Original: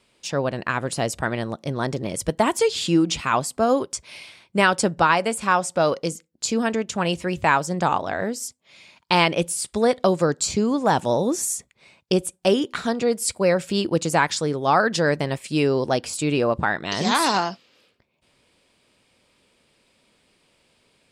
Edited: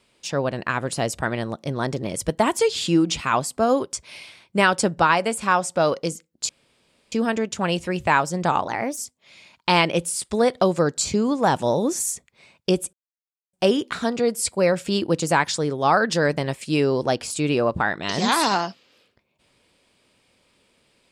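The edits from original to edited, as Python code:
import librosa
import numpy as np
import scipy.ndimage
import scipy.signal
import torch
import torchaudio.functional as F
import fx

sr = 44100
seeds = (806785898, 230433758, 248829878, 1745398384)

y = fx.edit(x, sr, fx.insert_room_tone(at_s=6.49, length_s=0.63),
    fx.speed_span(start_s=8.05, length_s=0.35, speed=1.2),
    fx.insert_silence(at_s=12.36, length_s=0.6), tone=tone)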